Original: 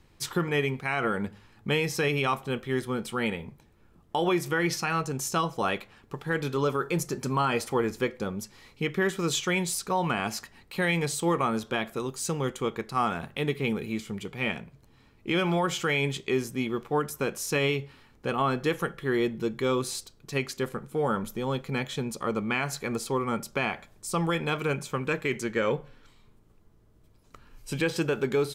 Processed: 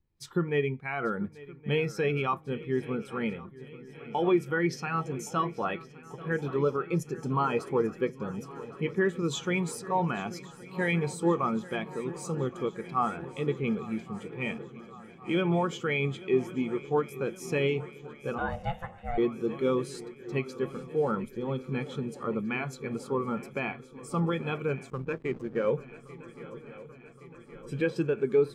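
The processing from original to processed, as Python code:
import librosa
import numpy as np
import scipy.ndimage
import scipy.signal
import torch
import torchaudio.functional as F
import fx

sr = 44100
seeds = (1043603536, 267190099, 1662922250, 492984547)

y = fx.echo_swing(x, sr, ms=1119, ratio=3, feedback_pct=75, wet_db=-13.5)
y = fx.ring_mod(y, sr, carrier_hz=350.0, at=(18.38, 19.18))
y = fx.backlash(y, sr, play_db=-27.5, at=(24.9, 25.66))
y = fx.spectral_expand(y, sr, expansion=1.5)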